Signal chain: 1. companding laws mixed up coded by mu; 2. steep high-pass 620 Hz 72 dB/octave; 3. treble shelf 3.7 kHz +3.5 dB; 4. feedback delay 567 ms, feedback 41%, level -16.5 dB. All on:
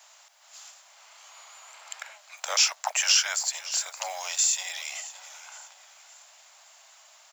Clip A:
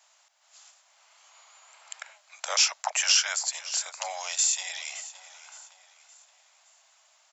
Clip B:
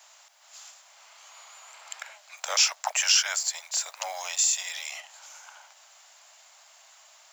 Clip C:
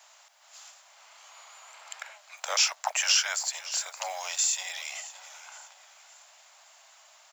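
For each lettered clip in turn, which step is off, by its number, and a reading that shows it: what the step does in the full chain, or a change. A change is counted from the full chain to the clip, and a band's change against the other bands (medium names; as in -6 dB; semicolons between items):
1, distortion -25 dB; 4, echo-to-direct -15.5 dB to none; 3, 8 kHz band -2.0 dB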